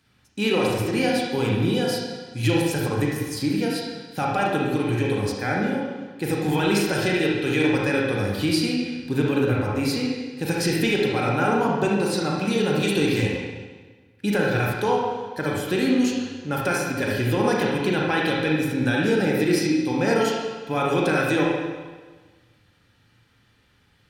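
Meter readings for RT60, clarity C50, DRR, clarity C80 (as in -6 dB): 1.4 s, -0.5 dB, -3.5 dB, 2.5 dB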